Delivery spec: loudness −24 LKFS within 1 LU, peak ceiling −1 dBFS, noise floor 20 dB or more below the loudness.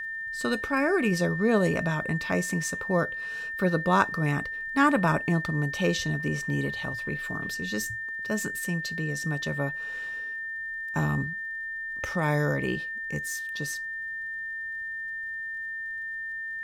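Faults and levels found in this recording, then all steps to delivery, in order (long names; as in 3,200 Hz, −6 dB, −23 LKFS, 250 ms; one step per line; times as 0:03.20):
crackle rate 32 per second; interfering tone 1,800 Hz; level of the tone −32 dBFS; integrated loudness −28.5 LKFS; sample peak −8.0 dBFS; target loudness −24.0 LKFS
→ click removal
notch filter 1,800 Hz, Q 30
level +4.5 dB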